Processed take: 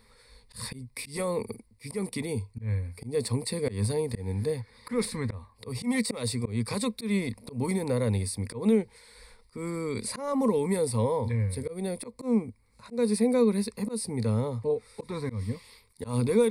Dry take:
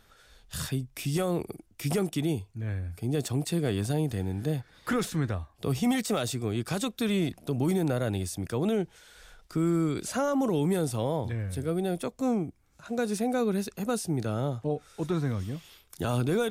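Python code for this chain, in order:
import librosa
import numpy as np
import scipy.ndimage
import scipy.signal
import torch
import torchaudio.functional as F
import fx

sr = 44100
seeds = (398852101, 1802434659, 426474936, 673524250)

y = fx.ripple_eq(x, sr, per_octave=0.93, db=16)
y = fx.auto_swell(y, sr, attack_ms=150.0)
y = y * 10.0 ** (-1.5 / 20.0)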